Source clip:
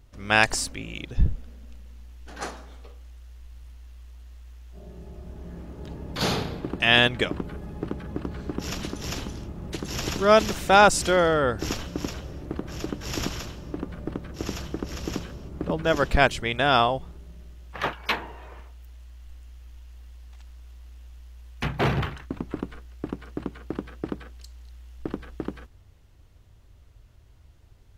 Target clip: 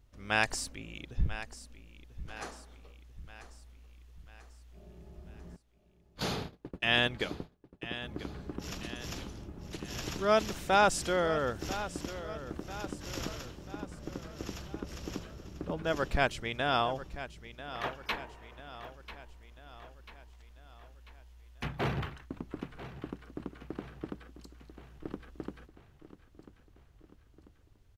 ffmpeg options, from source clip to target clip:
ffmpeg -i in.wav -filter_complex "[0:a]asettb=1/sr,asplit=3[link_01][link_02][link_03];[link_01]atrim=end=5.564[link_04];[link_02]atrim=start=5.56:end=8.02,asetpts=PTS-STARTPTS,afade=type=in:duration=0.004:curve=qsin,afade=type=out:start_time=2.456:duration=0.004:curve=qsin,agate=range=-31dB:threshold=-29dB:ratio=16:detection=peak[link_05];[link_03]atrim=start=8.016[link_06];[link_04][link_05]acrossfade=duration=0.004:curve1=hsin:curve2=qsin[link_07];[link_07][link_06]acrossfade=duration=0.004:curve1=qsin:curve2=hsin,aecho=1:1:992|1984|2976|3968|4960:0.211|0.108|0.055|0.028|0.0143,volume=-9dB" out.wav

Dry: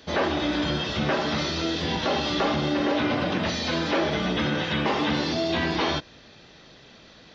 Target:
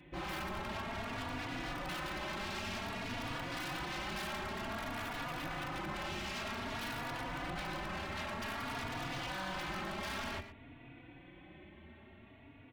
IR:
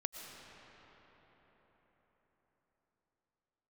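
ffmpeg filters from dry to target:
-filter_complex "[0:a]equalizer=frequency=125:width_type=o:width=1:gain=5,equalizer=frequency=500:width_type=o:width=1:gain=7,equalizer=frequency=1000:width_type=o:width=1:gain=8,equalizer=frequency=2000:width_type=o:width=1:gain=-7,asplit=2[link_01][link_02];[link_02]aeval=exprs='(mod(3.98*val(0)+1,2)-1)/3.98':channel_layout=same,volume=-11.5dB[link_03];[link_01][link_03]amix=inputs=2:normalize=0,dynaudnorm=framelen=420:gausssize=5:maxgain=3dB,asetrate=25442,aresample=44100,bandreject=frequency=198.6:width_type=h:width=4,bandreject=frequency=397.2:width_type=h:width=4,bandreject=frequency=595.8:width_type=h:width=4,bandreject=frequency=794.4:width_type=h:width=4,bandreject=frequency=993:width_type=h:width=4,bandreject=frequency=1191.6:width_type=h:width=4,bandreject=frequency=1390.2:width_type=h:width=4,bandreject=frequency=1588.8:width_type=h:width=4,bandreject=frequency=1787.4:width_type=h:width=4,bandreject=frequency=1986:width_type=h:width=4,bandreject=frequency=2184.6:width_type=h:width=4,bandreject=frequency=2383.2:width_type=h:width=4,bandreject=frequency=2581.8:width_type=h:width=4,bandreject=frequency=2780.4:width_type=h:width=4,bandreject=frequency=2979:width_type=h:width=4,bandreject=frequency=3177.6:width_type=h:width=4,bandreject=frequency=3376.2:width_type=h:width=4,alimiter=limit=-10dB:level=0:latency=1:release=359,aeval=exprs='0.0668*(abs(mod(val(0)/0.0668+3,4)-2)-1)':channel_layout=same,equalizer=frequency=460:width=4:gain=-11,aecho=1:1:116:0.224,asplit=2[link_04][link_05];[link_05]adelay=3.5,afreqshift=0.53[link_06];[link_04][link_06]amix=inputs=2:normalize=1,volume=-8.5dB"

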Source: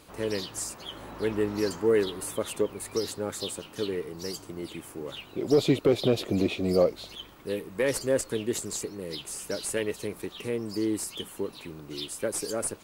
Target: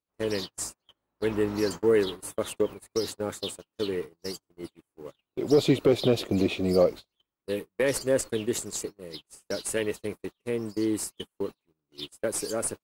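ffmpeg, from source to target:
ffmpeg -i in.wav -af "agate=range=-41dB:threshold=-34dB:ratio=16:detection=peak,volume=1dB" out.wav

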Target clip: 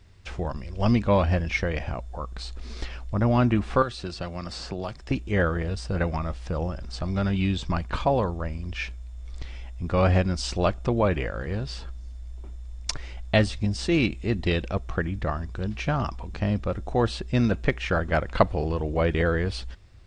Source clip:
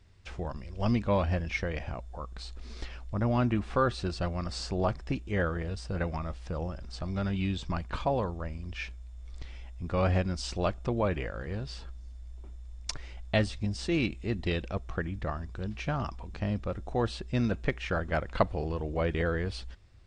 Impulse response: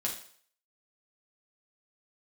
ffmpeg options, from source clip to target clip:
-filter_complex "[0:a]asettb=1/sr,asplit=3[link_01][link_02][link_03];[link_01]atrim=end=3.824[link_04];[link_02]atrim=start=3.82:end=5.11,asetpts=PTS-STARTPTS,afade=type=in:duration=0.004:curve=qsin,afade=type=out:start_time=1.286:duration=0.004:curve=qsin,acrossover=split=130|2500|5100[link_05][link_06][link_07][link_08];[link_05]acompressor=threshold=-47dB:ratio=4[link_09];[link_06]acompressor=threshold=-37dB:ratio=4[link_10];[link_07]acompressor=threshold=-46dB:ratio=4[link_11];[link_08]acompressor=threshold=-54dB:ratio=4[link_12];[link_09][link_10][link_11][link_12]amix=inputs=4:normalize=0[link_13];[link_03]atrim=start=5.106[link_14];[link_04][link_13]acrossfade=duration=0.004:curve1=hsin:curve2=qsin[link_15];[link_15][link_14]acrossfade=duration=0.004:curve1=qsin:curve2=hsin,volume=6dB"

